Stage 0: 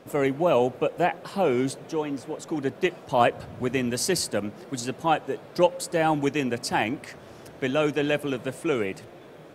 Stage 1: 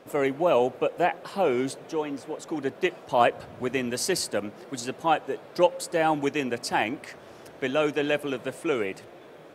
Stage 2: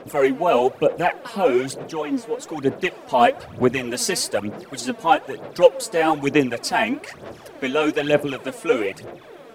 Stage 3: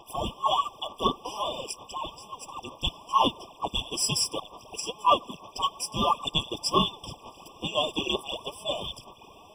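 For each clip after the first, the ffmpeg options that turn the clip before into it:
ffmpeg -i in.wav -af "bass=frequency=250:gain=-7,treble=frequency=4000:gain=-2" out.wav
ffmpeg -i in.wav -af "aphaser=in_gain=1:out_gain=1:delay=4.5:decay=0.67:speed=1.1:type=sinusoidal,volume=3dB" out.wav
ffmpeg -i in.wav -af "afftfilt=real='real(if(between(b,1,1012),(2*floor((b-1)/92)+1)*92-b,b),0)':imag='imag(if(between(b,1,1012),(2*floor((b-1)/92)+1)*92-b,b),0)*if(between(b,1,1012),-1,1)':win_size=2048:overlap=0.75,afftfilt=real='re*eq(mod(floor(b*sr/1024/1200),2),0)':imag='im*eq(mod(floor(b*sr/1024/1200),2),0)':win_size=1024:overlap=0.75" out.wav

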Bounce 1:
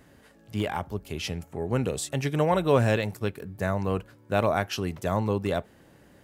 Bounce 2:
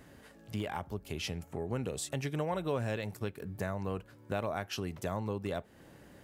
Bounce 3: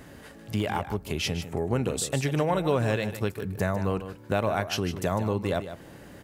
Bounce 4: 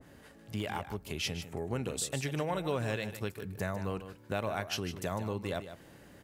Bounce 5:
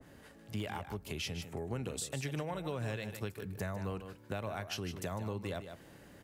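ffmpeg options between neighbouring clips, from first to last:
ffmpeg -i in.wav -af "acompressor=threshold=-36dB:ratio=2.5" out.wav
ffmpeg -i in.wav -af "aecho=1:1:152:0.282,volume=8.5dB" out.wav
ffmpeg -i in.wav -af "adynamicequalizer=threshold=0.00891:dfrequency=1500:dqfactor=0.7:tfrequency=1500:tqfactor=0.7:attack=5:release=100:ratio=0.375:range=2:mode=boostabove:tftype=highshelf,volume=-8.5dB" out.wav
ffmpeg -i in.wav -filter_complex "[0:a]acrossover=split=140[link_01][link_02];[link_02]acompressor=threshold=-36dB:ratio=3[link_03];[link_01][link_03]amix=inputs=2:normalize=0,volume=-1dB" out.wav

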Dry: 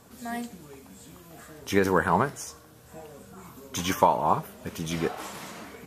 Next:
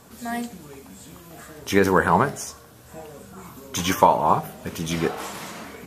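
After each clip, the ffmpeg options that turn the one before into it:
ffmpeg -i in.wav -af "bandreject=frequency=51.65:width_type=h:width=4,bandreject=frequency=103.3:width_type=h:width=4,bandreject=frequency=154.95:width_type=h:width=4,bandreject=frequency=206.6:width_type=h:width=4,bandreject=frequency=258.25:width_type=h:width=4,bandreject=frequency=309.9:width_type=h:width=4,bandreject=frequency=361.55:width_type=h:width=4,bandreject=frequency=413.2:width_type=h:width=4,bandreject=frequency=464.85:width_type=h:width=4,bandreject=frequency=516.5:width_type=h:width=4,bandreject=frequency=568.15:width_type=h:width=4,bandreject=frequency=619.8:width_type=h:width=4,bandreject=frequency=671.45:width_type=h:width=4,bandreject=frequency=723.1:width_type=h:width=4,bandreject=frequency=774.75:width_type=h:width=4,volume=5dB" out.wav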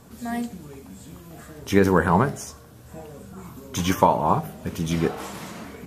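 ffmpeg -i in.wav -af "lowshelf=frequency=340:gain=8.5,volume=-3.5dB" out.wav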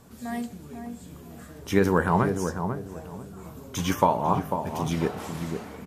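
ffmpeg -i in.wav -filter_complex "[0:a]asplit=2[link_01][link_02];[link_02]adelay=495,lowpass=frequency=840:poles=1,volume=-5.5dB,asplit=2[link_03][link_04];[link_04]adelay=495,lowpass=frequency=840:poles=1,volume=0.3,asplit=2[link_05][link_06];[link_06]adelay=495,lowpass=frequency=840:poles=1,volume=0.3,asplit=2[link_07][link_08];[link_08]adelay=495,lowpass=frequency=840:poles=1,volume=0.3[link_09];[link_01][link_03][link_05][link_07][link_09]amix=inputs=5:normalize=0,volume=-3.5dB" out.wav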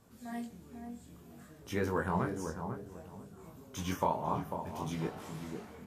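ffmpeg -i in.wav -af "flanger=delay=18.5:depth=6.9:speed=0.58,volume=-7dB" out.wav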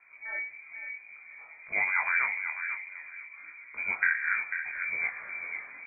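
ffmpeg -i in.wav -af "lowpass=frequency=2100:width_type=q:width=0.5098,lowpass=frequency=2100:width_type=q:width=0.6013,lowpass=frequency=2100:width_type=q:width=0.9,lowpass=frequency=2100:width_type=q:width=2.563,afreqshift=-2500,volume=4.5dB" out.wav

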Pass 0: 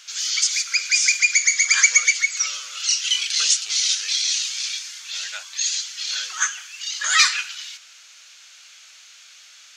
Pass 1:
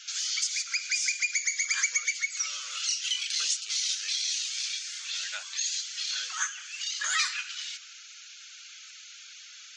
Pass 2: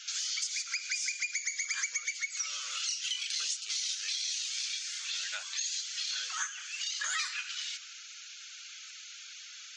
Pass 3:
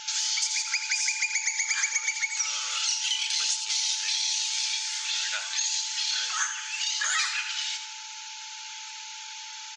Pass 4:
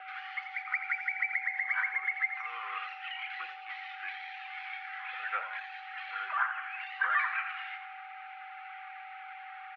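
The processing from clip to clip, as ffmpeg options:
ffmpeg -i in.wav -af "acompressor=threshold=-34dB:ratio=2,afftfilt=real='re*gte(hypot(re,im),0.00355)':imag='im*gte(hypot(re,im),0.00355)':win_size=1024:overlap=0.75" out.wav
ffmpeg -i in.wav -af "acompressor=threshold=-33dB:ratio=2.5" out.wav
ffmpeg -i in.wav -filter_complex "[0:a]aeval=exprs='val(0)+0.002*sin(2*PI*870*n/s)':channel_layout=same,asplit=6[link_01][link_02][link_03][link_04][link_05][link_06];[link_02]adelay=85,afreqshift=46,volume=-9.5dB[link_07];[link_03]adelay=170,afreqshift=92,volume=-16.6dB[link_08];[link_04]adelay=255,afreqshift=138,volume=-23.8dB[link_09];[link_05]adelay=340,afreqshift=184,volume=-30.9dB[link_10];[link_06]adelay=425,afreqshift=230,volume=-38dB[link_11];[link_01][link_07][link_08][link_09][link_10][link_11]amix=inputs=6:normalize=0,volume=6.5dB" out.wav
ffmpeg -i in.wav -af "highpass=frequency=590:width_type=q:width=0.5412,highpass=frequency=590:width_type=q:width=1.307,lowpass=frequency=2200:width_type=q:width=0.5176,lowpass=frequency=2200:width_type=q:width=0.7071,lowpass=frequency=2200:width_type=q:width=1.932,afreqshift=-110,volume=2dB" out.wav

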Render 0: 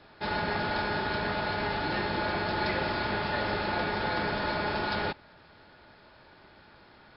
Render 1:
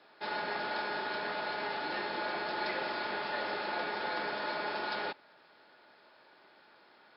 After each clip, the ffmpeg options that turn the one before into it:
ffmpeg -i in.wav -af "highpass=340,volume=-4.5dB" out.wav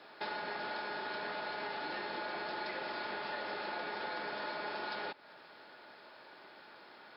ffmpeg -i in.wav -af "acompressor=threshold=-43dB:ratio=6,volume=5.5dB" out.wav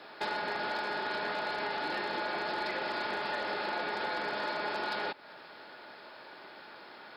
ffmpeg -i in.wav -af "asoftclip=type=hard:threshold=-32dB,volume=5.5dB" out.wav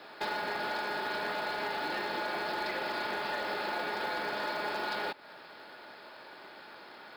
ffmpeg -i in.wav -af "acrusher=bits=6:mode=log:mix=0:aa=0.000001" out.wav

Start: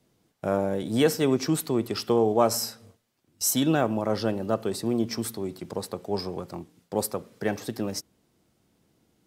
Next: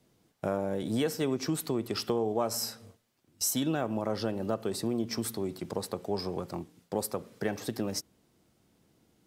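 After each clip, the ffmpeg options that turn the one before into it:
ffmpeg -i in.wav -af "acompressor=threshold=-28dB:ratio=3" out.wav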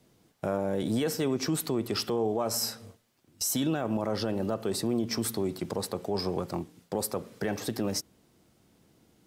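ffmpeg -i in.wav -af "alimiter=limit=-24dB:level=0:latency=1:release=13,volume=4dB" out.wav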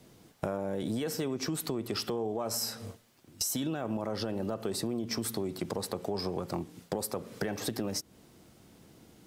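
ffmpeg -i in.wav -af "acompressor=threshold=-37dB:ratio=6,volume=6.5dB" out.wav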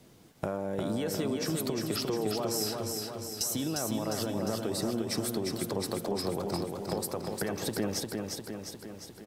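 ffmpeg -i in.wav -af "aecho=1:1:353|706|1059|1412|1765|2118|2471|2824|3177:0.631|0.379|0.227|0.136|0.0818|0.0491|0.0294|0.0177|0.0106" out.wav

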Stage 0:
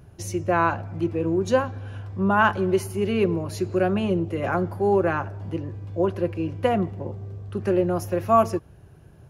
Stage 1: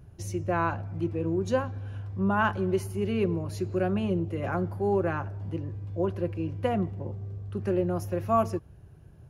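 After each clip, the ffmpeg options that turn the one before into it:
ffmpeg -i in.wav -af "lowshelf=frequency=180:gain=7.5,volume=-7dB" out.wav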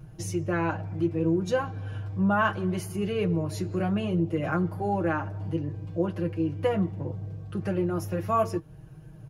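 ffmpeg -i in.wav -filter_complex "[0:a]aecho=1:1:6.4:0.75,asplit=2[link_01][link_02];[link_02]acompressor=threshold=-34dB:ratio=6,volume=-1dB[link_03];[link_01][link_03]amix=inputs=2:normalize=0,flanger=delay=5.6:depth=4.4:regen=-51:speed=0.67:shape=sinusoidal,volume=2dB" out.wav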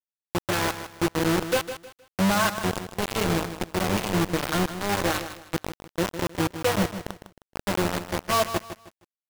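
ffmpeg -i in.wav -filter_complex "[0:a]acrusher=bits=3:mix=0:aa=0.000001,asplit=2[link_01][link_02];[link_02]aecho=0:1:156|312|468:0.282|0.0817|0.0237[link_03];[link_01][link_03]amix=inputs=2:normalize=0" out.wav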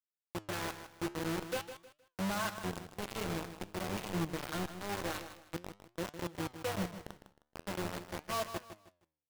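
ffmpeg -i in.wav -af "flanger=delay=5.5:depth=9.6:regen=86:speed=0.48:shape=triangular,volume=-8.5dB" out.wav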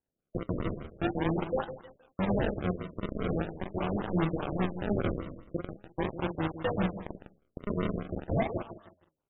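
ffmpeg -i in.wav -af "aecho=1:1:44|49:0.501|0.126,acrusher=samples=36:mix=1:aa=0.000001:lfo=1:lforange=36:lforate=0.42,afftfilt=real='re*lt(b*sr/1024,630*pow(3900/630,0.5+0.5*sin(2*PI*5*pts/sr)))':imag='im*lt(b*sr/1024,630*pow(3900/630,0.5+0.5*sin(2*PI*5*pts/sr)))':win_size=1024:overlap=0.75,volume=6.5dB" out.wav

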